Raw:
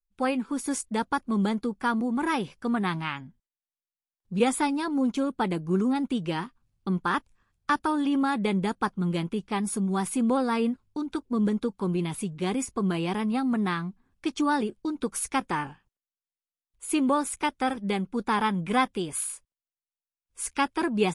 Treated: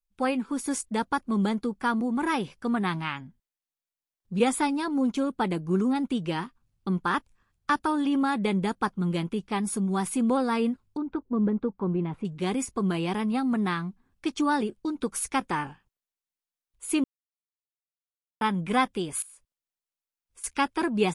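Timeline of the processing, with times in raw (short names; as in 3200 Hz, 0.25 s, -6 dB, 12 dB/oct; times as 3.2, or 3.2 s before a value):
10.97–12.25 LPF 1400 Hz
17.04–18.41 mute
19.22–20.44 compressor, threshold -47 dBFS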